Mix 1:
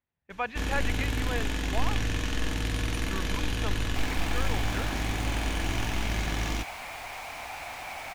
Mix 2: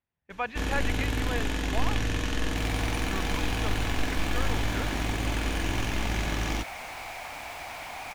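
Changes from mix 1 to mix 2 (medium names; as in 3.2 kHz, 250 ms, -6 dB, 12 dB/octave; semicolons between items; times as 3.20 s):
first sound: add peaking EQ 560 Hz +3 dB 2.7 oct; second sound: entry -1.40 s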